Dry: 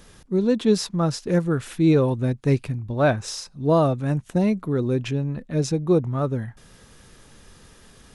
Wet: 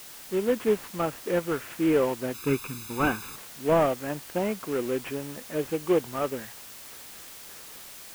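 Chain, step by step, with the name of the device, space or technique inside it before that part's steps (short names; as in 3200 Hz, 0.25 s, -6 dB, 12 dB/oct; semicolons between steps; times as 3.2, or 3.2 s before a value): gate with hold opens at -38 dBFS; army field radio (BPF 380–3000 Hz; CVSD 16 kbps; white noise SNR 16 dB); 2.34–3.36 comb 0.8 ms, depth 98%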